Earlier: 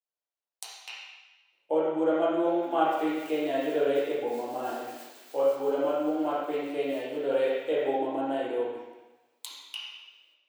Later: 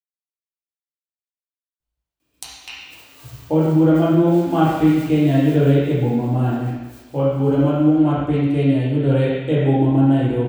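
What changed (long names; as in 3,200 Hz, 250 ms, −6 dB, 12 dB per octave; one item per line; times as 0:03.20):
speech: entry +1.80 s
master: remove four-pole ladder high-pass 390 Hz, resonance 30%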